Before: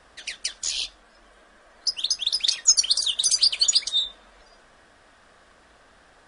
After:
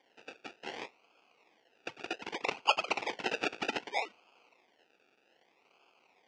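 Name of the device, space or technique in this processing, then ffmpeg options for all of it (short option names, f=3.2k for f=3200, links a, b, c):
circuit-bent sampling toy: -af "acrusher=samples=33:mix=1:aa=0.000001:lfo=1:lforange=19.8:lforate=0.64,highpass=570,equalizer=f=600:t=q:w=4:g=-8,equalizer=f=1.1k:t=q:w=4:g=-5,equalizer=f=1.7k:t=q:w=4:g=-4,equalizer=f=2.6k:t=q:w=4:g=7,equalizer=f=4k:t=q:w=4:g=-5,lowpass=f=5.3k:w=0.5412,lowpass=f=5.3k:w=1.3066,volume=-6.5dB"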